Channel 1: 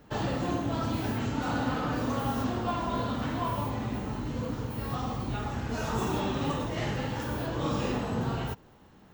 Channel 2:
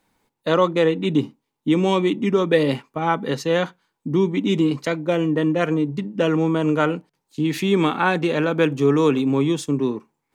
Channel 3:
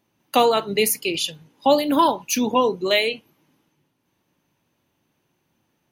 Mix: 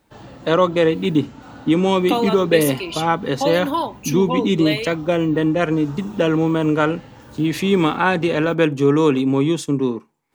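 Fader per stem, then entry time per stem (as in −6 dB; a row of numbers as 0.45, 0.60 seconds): −9.5, +2.0, −4.5 decibels; 0.00, 0.00, 1.75 seconds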